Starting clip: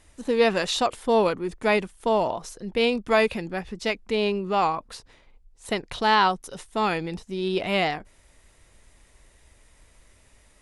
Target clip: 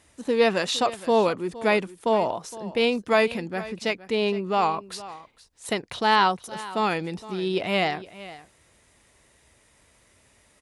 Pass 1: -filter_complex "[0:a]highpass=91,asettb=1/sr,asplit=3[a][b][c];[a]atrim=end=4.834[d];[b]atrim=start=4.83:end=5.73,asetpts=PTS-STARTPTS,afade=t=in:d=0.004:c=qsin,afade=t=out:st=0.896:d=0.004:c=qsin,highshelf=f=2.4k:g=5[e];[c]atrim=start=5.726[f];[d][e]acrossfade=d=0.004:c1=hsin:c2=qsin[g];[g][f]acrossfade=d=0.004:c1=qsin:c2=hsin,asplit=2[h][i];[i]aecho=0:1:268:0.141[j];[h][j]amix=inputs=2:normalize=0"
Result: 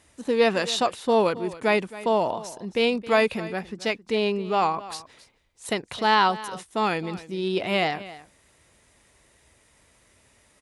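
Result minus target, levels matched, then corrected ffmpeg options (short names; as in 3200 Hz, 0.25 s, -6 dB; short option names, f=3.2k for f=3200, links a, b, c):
echo 0.196 s early
-filter_complex "[0:a]highpass=91,asettb=1/sr,asplit=3[a][b][c];[a]atrim=end=4.834[d];[b]atrim=start=4.83:end=5.73,asetpts=PTS-STARTPTS,afade=t=in:d=0.004:c=qsin,afade=t=out:st=0.896:d=0.004:c=qsin,highshelf=f=2.4k:g=5[e];[c]atrim=start=5.726[f];[d][e]acrossfade=d=0.004:c1=hsin:c2=qsin[g];[g][f]acrossfade=d=0.004:c1=qsin:c2=hsin,asplit=2[h][i];[i]aecho=0:1:464:0.141[j];[h][j]amix=inputs=2:normalize=0"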